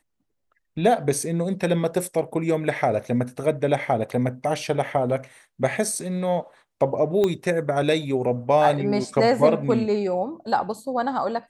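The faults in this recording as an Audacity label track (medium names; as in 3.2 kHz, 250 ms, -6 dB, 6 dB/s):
7.240000	7.240000	pop -11 dBFS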